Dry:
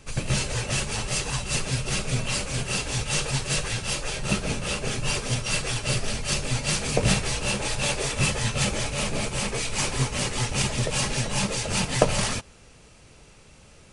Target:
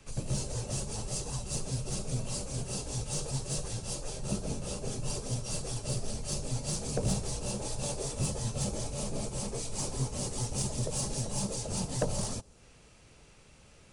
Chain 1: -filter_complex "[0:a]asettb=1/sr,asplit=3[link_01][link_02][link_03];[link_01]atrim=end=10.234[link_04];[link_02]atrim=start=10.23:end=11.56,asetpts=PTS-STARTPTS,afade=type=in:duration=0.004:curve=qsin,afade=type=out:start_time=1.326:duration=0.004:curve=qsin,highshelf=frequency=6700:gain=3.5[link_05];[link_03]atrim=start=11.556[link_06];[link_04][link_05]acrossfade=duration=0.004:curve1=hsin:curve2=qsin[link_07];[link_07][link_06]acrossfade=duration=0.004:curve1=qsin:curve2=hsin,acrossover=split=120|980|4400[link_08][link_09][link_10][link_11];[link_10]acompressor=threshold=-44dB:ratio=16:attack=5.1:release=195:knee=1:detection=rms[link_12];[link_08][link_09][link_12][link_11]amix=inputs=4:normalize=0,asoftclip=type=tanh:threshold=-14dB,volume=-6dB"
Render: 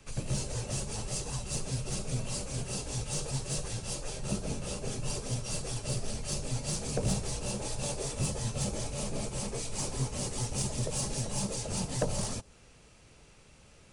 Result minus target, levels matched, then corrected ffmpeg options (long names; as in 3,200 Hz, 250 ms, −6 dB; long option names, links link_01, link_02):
downward compressor: peak gain reduction −8 dB
-filter_complex "[0:a]asettb=1/sr,asplit=3[link_01][link_02][link_03];[link_01]atrim=end=10.234[link_04];[link_02]atrim=start=10.23:end=11.56,asetpts=PTS-STARTPTS,afade=type=in:duration=0.004:curve=qsin,afade=type=out:start_time=1.326:duration=0.004:curve=qsin,highshelf=frequency=6700:gain=3.5[link_05];[link_03]atrim=start=11.556[link_06];[link_04][link_05]acrossfade=duration=0.004:curve1=hsin:curve2=qsin[link_07];[link_07][link_06]acrossfade=duration=0.004:curve1=qsin:curve2=hsin,acrossover=split=120|980|4400[link_08][link_09][link_10][link_11];[link_10]acompressor=threshold=-52.5dB:ratio=16:attack=5.1:release=195:knee=1:detection=rms[link_12];[link_08][link_09][link_12][link_11]amix=inputs=4:normalize=0,asoftclip=type=tanh:threshold=-14dB,volume=-6dB"